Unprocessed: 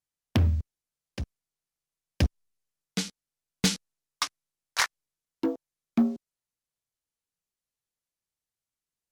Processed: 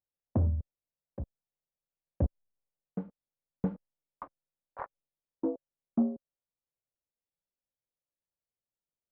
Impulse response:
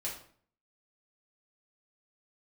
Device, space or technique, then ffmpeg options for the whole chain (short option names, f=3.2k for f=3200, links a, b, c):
under water: -af "lowpass=f=970:w=0.5412,lowpass=f=970:w=1.3066,equalizer=f=550:t=o:w=0.27:g=7,volume=-4.5dB"